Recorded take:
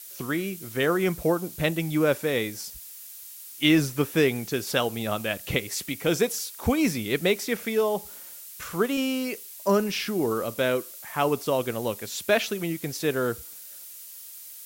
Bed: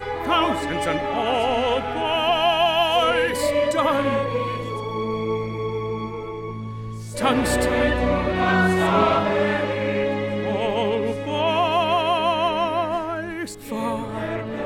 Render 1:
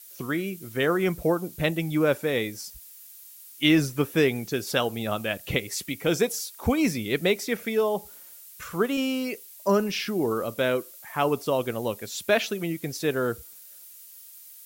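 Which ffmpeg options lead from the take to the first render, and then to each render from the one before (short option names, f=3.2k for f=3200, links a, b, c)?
-af "afftdn=nr=6:nf=-43"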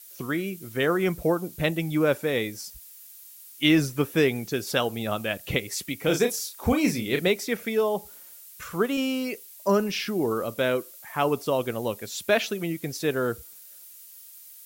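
-filter_complex "[0:a]asettb=1/sr,asplit=3[a][b][c];[a]atrim=end=5.984[d];[b]atrim=start=5.98:end=7.28,asetpts=PTS-STARTPTS,afade=t=in:d=0.004:c=qsin,afade=t=out:st=1.296:d=0.004:c=qsin,asplit=2[e][f];[f]adelay=33,volume=-6dB[g];[e][g]amix=inputs=2:normalize=0,atrim=end_sample=57330[h];[c]atrim=start=7.276[i];[d][h]acrossfade=d=0.004:c1=hsin:c2=qsin[j];[j][i]acrossfade=d=0.004:c1=qsin:c2=hsin"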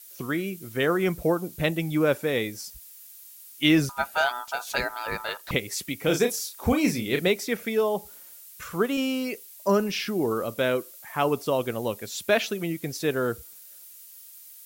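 -filter_complex "[0:a]asettb=1/sr,asplit=3[a][b][c];[a]atrim=end=3.894[d];[b]atrim=start=3.89:end=5.51,asetpts=PTS-STARTPTS,afade=t=in:d=0.004:c=qsin,afade=t=out:st=1.616:d=0.004:c=qsin,aeval=exprs='val(0)*sin(2*PI*1100*n/s)':c=same[e];[c]atrim=start=5.506[f];[d][e]acrossfade=d=0.004:c1=hsin:c2=qsin[g];[g][f]acrossfade=d=0.004:c1=qsin:c2=hsin"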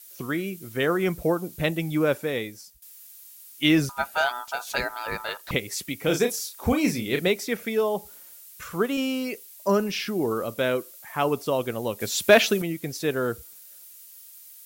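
-filter_complex "[0:a]asettb=1/sr,asplit=3[a][b][c];[a]atrim=end=12.004[d];[b]atrim=start=12:end=12.62,asetpts=PTS-STARTPTS,afade=t=in:d=0.004:c=qsin,afade=t=out:st=0.616:d=0.004:c=qsin,acontrast=89[e];[c]atrim=start=12.616[f];[d][e]acrossfade=d=0.004:c1=hsin:c2=qsin[g];[g][f]acrossfade=d=0.004:c1=qsin:c2=hsin,asplit=2[h][i];[h]atrim=end=2.82,asetpts=PTS-STARTPTS,afade=t=out:st=1.9:d=0.92:c=qsin:silence=0.141254[j];[i]atrim=start=2.82,asetpts=PTS-STARTPTS,afade=t=in:d=0.004:c=hsin:silence=0.141254[k];[j][k]concat=n=2:v=0:a=1"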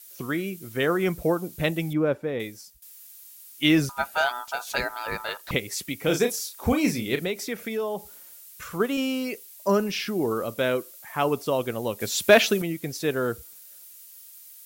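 -filter_complex "[0:a]asettb=1/sr,asplit=3[a][b][c];[a]atrim=end=1.934[d];[b]atrim=start=1.93:end=2.4,asetpts=PTS-STARTPTS,afade=t=in:d=0.004:c=qsin,afade=t=out:st=0.466:d=0.004:c=qsin,lowpass=f=1k:p=1[e];[c]atrim=start=2.396[f];[d][e]acrossfade=d=0.004:c1=hsin:c2=qsin[g];[g][f]acrossfade=d=0.004:c1=qsin:c2=hsin,asettb=1/sr,asplit=3[h][i][j];[h]atrim=end=7.154[k];[i]atrim=start=7.15:end=8.8,asetpts=PTS-STARTPTS,afade=t=in:d=0.004:c=qsin,afade=t=out:st=1.646:d=0.004:c=qsin,acompressor=threshold=-28dB:ratio=2:attack=3.2:release=140:knee=1:detection=peak[l];[j]atrim=start=8.796[m];[k][l]acrossfade=d=0.004:c1=hsin:c2=qsin[n];[n][m]acrossfade=d=0.004:c1=qsin:c2=hsin"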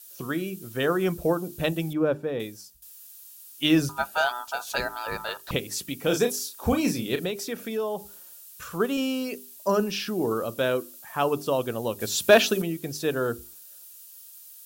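-af "equalizer=f=2.1k:t=o:w=0.21:g=-12,bandreject=f=50:t=h:w=6,bandreject=f=100:t=h:w=6,bandreject=f=150:t=h:w=6,bandreject=f=200:t=h:w=6,bandreject=f=250:t=h:w=6,bandreject=f=300:t=h:w=6,bandreject=f=350:t=h:w=6,bandreject=f=400:t=h:w=6"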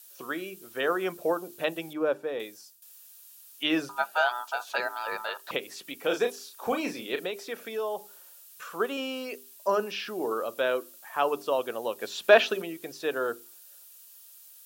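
-filter_complex "[0:a]acrossover=split=3600[a][b];[b]acompressor=threshold=-47dB:ratio=4:attack=1:release=60[c];[a][c]amix=inputs=2:normalize=0,highpass=450"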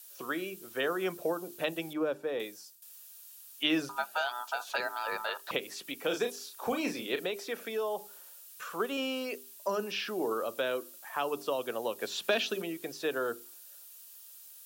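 -filter_complex "[0:a]acrossover=split=280|3000[a][b][c];[b]acompressor=threshold=-30dB:ratio=6[d];[a][d][c]amix=inputs=3:normalize=0"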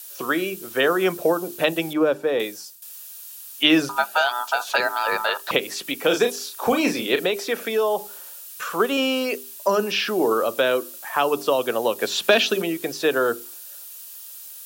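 -af "volume=12dB"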